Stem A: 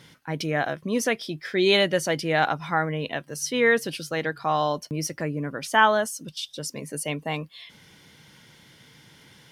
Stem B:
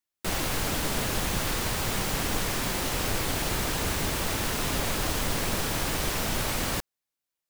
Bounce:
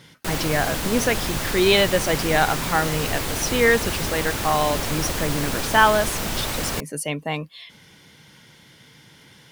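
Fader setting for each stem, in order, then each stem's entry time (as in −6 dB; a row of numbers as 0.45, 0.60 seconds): +2.5, +2.0 decibels; 0.00, 0.00 seconds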